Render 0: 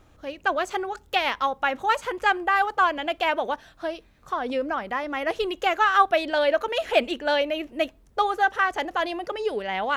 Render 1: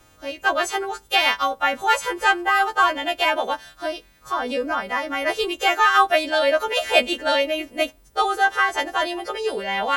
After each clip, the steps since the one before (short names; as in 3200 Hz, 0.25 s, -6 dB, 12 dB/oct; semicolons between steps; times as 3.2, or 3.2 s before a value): frequency quantiser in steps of 2 st; gain +2.5 dB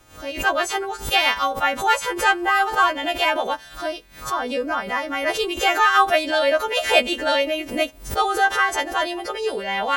backwards sustainer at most 130 dB/s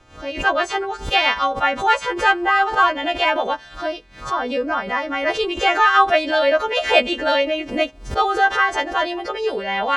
air absorption 110 m; gain +2.5 dB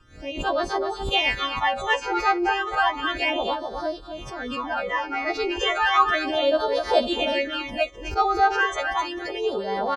echo 0.258 s -7 dB; phaser stages 12, 0.33 Hz, lowest notch 170–2600 Hz; gain -2.5 dB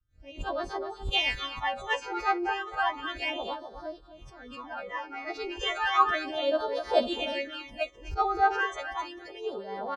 three-band expander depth 70%; gain -7.5 dB